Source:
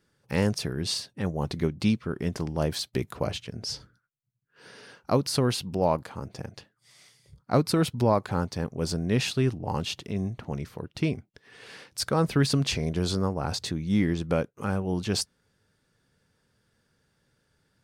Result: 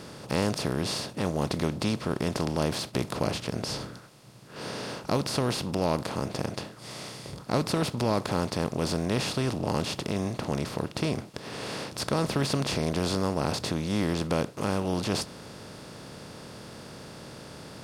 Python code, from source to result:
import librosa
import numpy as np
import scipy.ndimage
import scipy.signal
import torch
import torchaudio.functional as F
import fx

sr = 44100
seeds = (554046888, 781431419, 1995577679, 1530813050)

y = fx.bin_compress(x, sr, power=0.4)
y = F.gain(torch.from_numpy(y), -7.5).numpy()